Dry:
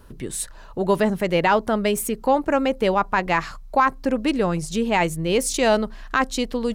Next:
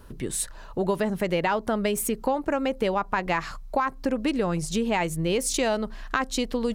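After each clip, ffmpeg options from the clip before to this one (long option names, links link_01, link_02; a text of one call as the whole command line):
ffmpeg -i in.wav -af "acompressor=threshold=-21dB:ratio=6" out.wav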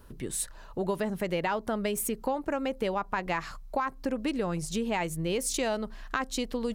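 ffmpeg -i in.wav -af "highshelf=frequency=12000:gain=5,volume=-5dB" out.wav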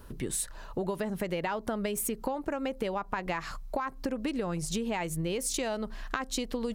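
ffmpeg -i in.wav -af "acompressor=threshold=-32dB:ratio=6,volume=3.5dB" out.wav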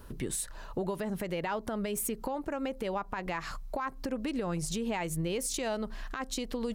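ffmpeg -i in.wav -af "alimiter=limit=-23.5dB:level=0:latency=1:release=81" out.wav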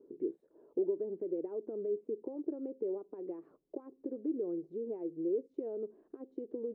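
ffmpeg -i in.wav -af "asuperpass=centerf=370:order=4:qfactor=2.6,volume=4dB" out.wav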